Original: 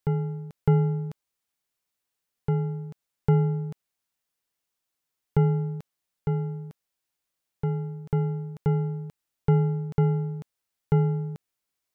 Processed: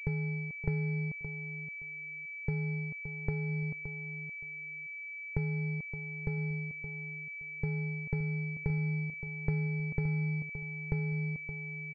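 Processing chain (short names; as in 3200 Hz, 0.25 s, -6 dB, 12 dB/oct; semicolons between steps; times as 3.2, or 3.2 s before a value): compressor 12:1, threshold -28 dBFS, peak gain reduction 13 dB; tilt -2 dB/oct; feedback echo 0.57 s, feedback 18%, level -10.5 dB; pulse-width modulation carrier 2300 Hz; gain -7 dB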